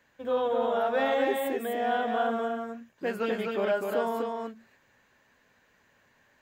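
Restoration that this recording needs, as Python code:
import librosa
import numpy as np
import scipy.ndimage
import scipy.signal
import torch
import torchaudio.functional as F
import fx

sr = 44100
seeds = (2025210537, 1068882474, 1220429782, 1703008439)

y = fx.fix_echo_inverse(x, sr, delay_ms=251, level_db=-3.5)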